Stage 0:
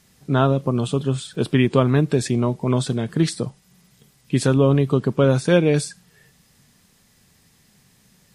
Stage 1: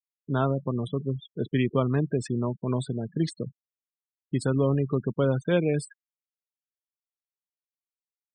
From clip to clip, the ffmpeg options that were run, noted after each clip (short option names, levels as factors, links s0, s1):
-filter_complex "[0:a]acrossover=split=620|3300[s0][s1][s2];[s2]acompressor=mode=upward:threshold=0.00562:ratio=2.5[s3];[s0][s1][s3]amix=inputs=3:normalize=0,afftfilt=real='re*gte(hypot(re,im),0.0631)':imag='im*gte(hypot(re,im),0.0631)':win_size=1024:overlap=0.75,volume=0.422"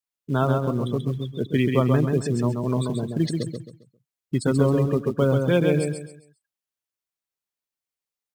-filter_complex "[0:a]asplit=2[s0][s1];[s1]acrusher=bits=5:mode=log:mix=0:aa=0.000001,volume=0.422[s2];[s0][s2]amix=inputs=2:normalize=0,aecho=1:1:134|268|402|536:0.596|0.185|0.0572|0.0177"